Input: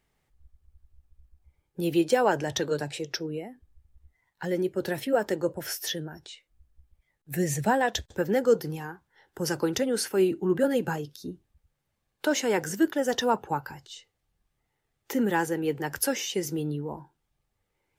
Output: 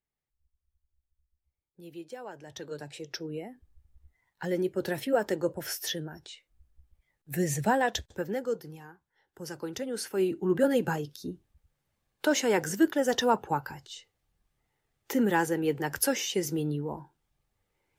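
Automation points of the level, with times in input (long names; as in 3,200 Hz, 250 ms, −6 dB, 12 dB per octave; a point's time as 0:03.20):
0:02.34 −19.5 dB
0:02.65 −12 dB
0:03.47 −1.5 dB
0:07.90 −1.5 dB
0:08.60 −11 dB
0:09.55 −11 dB
0:10.65 0 dB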